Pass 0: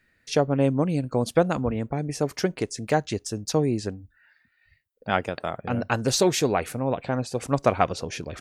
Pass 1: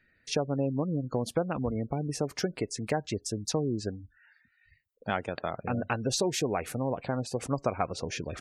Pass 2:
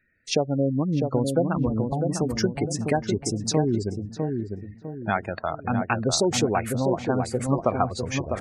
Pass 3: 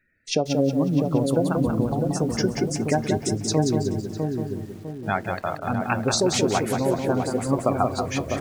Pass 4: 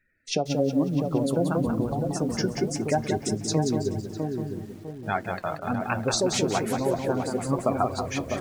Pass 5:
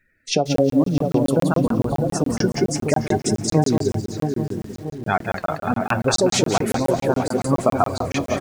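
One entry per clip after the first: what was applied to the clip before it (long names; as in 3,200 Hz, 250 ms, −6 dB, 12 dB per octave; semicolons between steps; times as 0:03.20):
gate on every frequency bin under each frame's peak −25 dB strong; downward compressor 2.5 to 1, threshold −26 dBFS, peak gain reduction 8.5 dB; level −1.5 dB
gate on every frequency bin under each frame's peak −20 dB strong; noise reduction from a noise print of the clip's start 8 dB; feedback echo with a low-pass in the loop 652 ms, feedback 41%, low-pass 900 Hz, level −4 dB; level +6.5 dB
on a send at −16 dB: convolution reverb RT60 0.20 s, pre-delay 3 ms; on the sum: feedback echo at a low word length 182 ms, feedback 35%, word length 8 bits, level −5.5 dB
flanger 1 Hz, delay 0.9 ms, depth 5.8 ms, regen +58%; level +1.5 dB
repeating echo 626 ms, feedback 44%, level −19 dB; regular buffer underruns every 0.14 s, samples 1,024, zero, from 0:00.56; level +6.5 dB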